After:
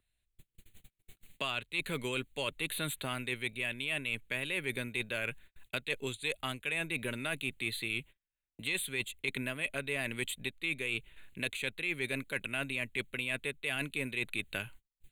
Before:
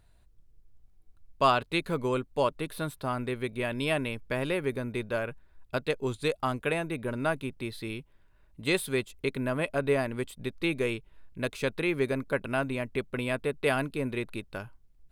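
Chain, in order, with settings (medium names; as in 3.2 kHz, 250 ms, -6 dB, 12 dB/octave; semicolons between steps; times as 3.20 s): gate -50 dBFS, range -40 dB; resonant high shelf 1.6 kHz +12.5 dB, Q 1.5; reverse; compression 16:1, threshold -28 dBFS, peak gain reduction 18 dB; reverse; wow and flutter 28 cents; in parallel at -7 dB: hard clipper -26.5 dBFS, distortion -12 dB; on the sum: Butterworth band-stop 5.3 kHz, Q 2; three bands compressed up and down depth 70%; trim -6 dB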